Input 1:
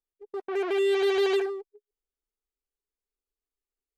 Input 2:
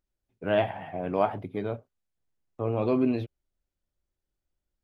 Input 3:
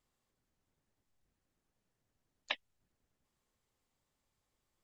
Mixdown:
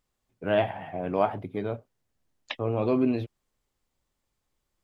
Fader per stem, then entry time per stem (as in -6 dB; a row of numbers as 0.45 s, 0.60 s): mute, +0.5 dB, +1.5 dB; mute, 0.00 s, 0.00 s